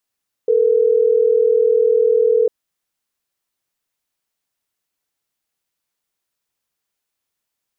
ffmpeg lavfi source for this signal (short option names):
-f lavfi -i "aevalsrc='0.2*(sin(2*PI*440*t)+sin(2*PI*480*t))*clip(min(mod(t,6),2-mod(t,6))/0.005,0,1)':d=3.12:s=44100"